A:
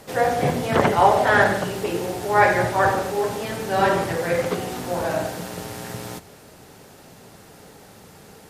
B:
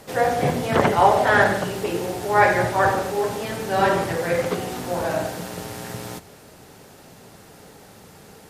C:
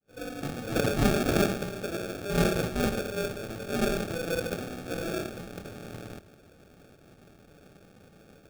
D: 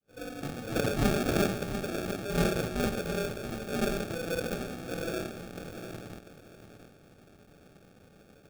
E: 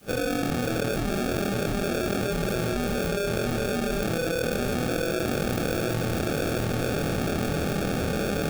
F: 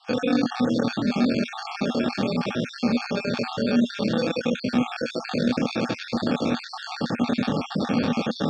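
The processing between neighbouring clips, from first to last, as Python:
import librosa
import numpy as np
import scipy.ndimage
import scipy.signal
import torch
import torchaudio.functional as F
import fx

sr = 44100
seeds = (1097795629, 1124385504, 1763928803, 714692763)

y1 = x
y2 = fx.fade_in_head(y1, sr, length_s=0.84)
y2 = fx.sample_hold(y2, sr, seeds[0], rate_hz=1000.0, jitter_pct=0)
y2 = y2 * 10.0 ** (-8.5 / 20.0)
y3 = fx.echo_feedback(y2, sr, ms=694, feedback_pct=24, wet_db=-10)
y3 = y3 * 10.0 ** (-2.5 / 20.0)
y4 = fx.doubler(y3, sr, ms=25.0, db=-2.5)
y4 = fx.env_flatten(y4, sr, amount_pct=100)
y4 = y4 * 10.0 ** (-6.0 / 20.0)
y5 = fx.spec_dropout(y4, sr, seeds[1], share_pct=49)
y5 = fx.cabinet(y5, sr, low_hz=180.0, low_slope=12, high_hz=5200.0, hz=(240.0, 380.0, 680.0, 1000.0, 1500.0, 4300.0), db=(9, -9, -5, 9, -6, 4))
y5 = y5 * 10.0 ** (5.0 / 20.0)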